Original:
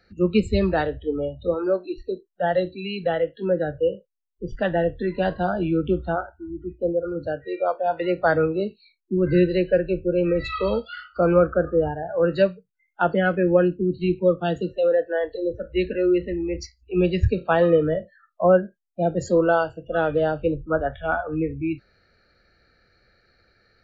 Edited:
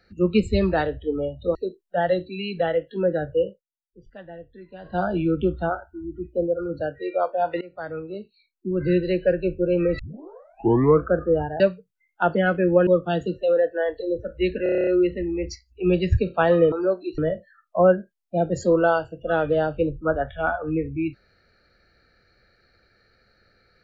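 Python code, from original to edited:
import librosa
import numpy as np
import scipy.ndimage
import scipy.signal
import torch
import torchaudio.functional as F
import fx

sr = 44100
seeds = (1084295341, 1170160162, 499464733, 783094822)

y = fx.edit(x, sr, fx.move(start_s=1.55, length_s=0.46, to_s=17.83),
    fx.fade_down_up(start_s=3.93, length_s=1.53, db=-18.5, fade_s=0.17),
    fx.fade_in_from(start_s=8.07, length_s=1.87, floor_db=-21.5),
    fx.tape_start(start_s=10.45, length_s=1.08),
    fx.cut(start_s=12.06, length_s=0.33),
    fx.cut(start_s=13.66, length_s=0.56),
    fx.stutter(start_s=15.98, slice_s=0.03, count=9), tone=tone)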